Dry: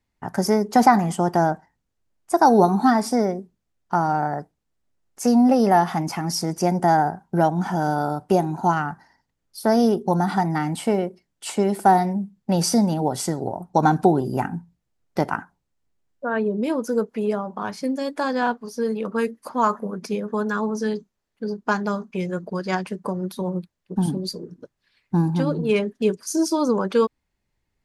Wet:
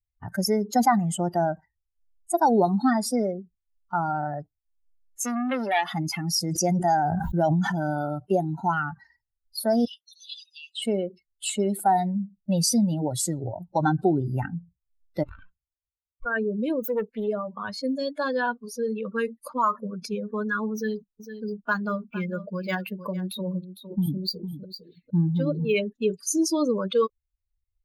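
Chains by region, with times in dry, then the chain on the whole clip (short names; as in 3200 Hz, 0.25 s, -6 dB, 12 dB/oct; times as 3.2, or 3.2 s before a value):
5.24–5.94 HPF 240 Hz 24 dB/oct + bell 440 Hz -4 dB 0.47 oct + core saturation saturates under 1400 Hz
6.47–7.72 dynamic EQ 6600 Hz, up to +7 dB, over -49 dBFS, Q 1.4 + sustainer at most 27 dB/s
9.85–10.82 brick-wall FIR high-pass 2500 Hz + air absorption 74 m + notch 6700 Hz, Q 23
15.23–16.26 minimum comb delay 0.76 ms + high shelf 6300 Hz -6 dB + compressor 16:1, threshold -37 dBFS
16.82–17.28 self-modulated delay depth 0.35 ms + high shelf 8100 Hz +2 dB
20.74–25.75 echo 0.456 s -11 dB + decimation joined by straight lines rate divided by 2×
whole clip: per-bin expansion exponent 2; fast leveller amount 50%; gain -4 dB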